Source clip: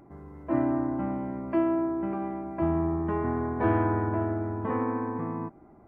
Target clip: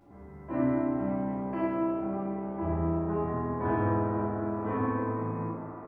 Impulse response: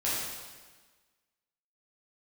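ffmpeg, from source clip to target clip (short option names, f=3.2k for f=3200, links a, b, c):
-filter_complex "[0:a]asettb=1/sr,asplit=3[a][b][c];[a]atrim=end=1.824[d];[b]atrim=start=1.82:end=4.38,asetpts=PTS-STARTPTS,afade=t=in:d=0.004:c=qsin,afade=t=out:st=2.556:d=0.004:c=qsin,highshelf=f=2.1k:g=-10[e];[c]atrim=start=4.376[f];[d][e]acrossfade=d=0.004:c1=hsin:c2=qsin[g];[g][f]acrossfade=d=0.004:c1=qsin:c2=hsin,asplit=6[h][i][j][k][l][m];[i]adelay=431,afreqshift=100,volume=-19.5dB[n];[j]adelay=862,afreqshift=200,volume=-23.9dB[o];[k]adelay=1293,afreqshift=300,volume=-28.4dB[p];[l]adelay=1724,afreqshift=400,volume=-32.8dB[q];[m]adelay=2155,afreqshift=500,volume=-37.2dB[r];[h][n][o][p][q][r]amix=inputs=6:normalize=0[s];[1:a]atrim=start_sample=2205[t];[s][t]afir=irnorm=-1:irlink=0,volume=-8dB"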